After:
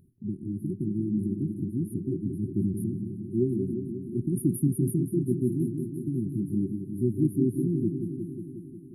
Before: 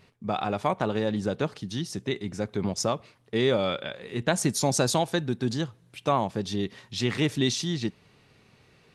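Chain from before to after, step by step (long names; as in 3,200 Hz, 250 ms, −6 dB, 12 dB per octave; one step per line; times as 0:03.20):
brick-wall band-stop 390–9,500 Hz
echo whose low-pass opens from repeat to repeat 180 ms, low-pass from 400 Hz, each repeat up 2 octaves, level −6 dB
level +1.5 dB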